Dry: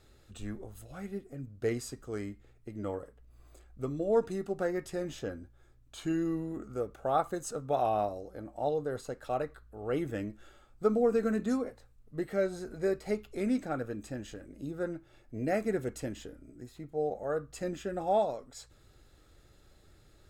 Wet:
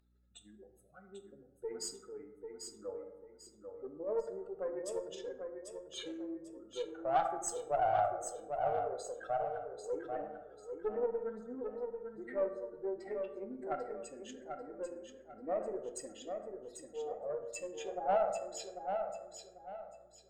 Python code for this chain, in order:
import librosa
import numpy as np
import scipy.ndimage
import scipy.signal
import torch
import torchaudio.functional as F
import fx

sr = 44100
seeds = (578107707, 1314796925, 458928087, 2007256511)

p1 = fx.spec_expand(x, sr, power=2.4)
p2 = scipy.signal.sosfilt(scipy.signal.butter(2, 850.0, 'highpass', fs=sr, output='sos'), p1)
p3 = fx.cheby_harmonics(p2, sr, harmonics=(4,), levels_db=(-21,), full_scale_db=-22.5)
p4 = 10.0 ** (-31.0 / 20.0) * np.tanh(p3 / 10.0 ** (-31.0 / 20.0))
p5 = p3 + F.gain(torch.from_numpy(p4), -7.0).numpy()
p6 = fx.add_hum(p5, sr, base_hz=60, snr_db=32)
p7 = p6 + fx.echo_feedback(p6, sr, ms=793, feedback_pct=31, wet_db=-6.0, dry=0)
p8 = fx.rev_plate(p7, sr, seeds[0], rt60_s=1.0, hf_ratio=0.4, predelay_ms=0, drr_db=5.5)
y = fx.doppler_dist(p8, sr, depth_ms=0.12)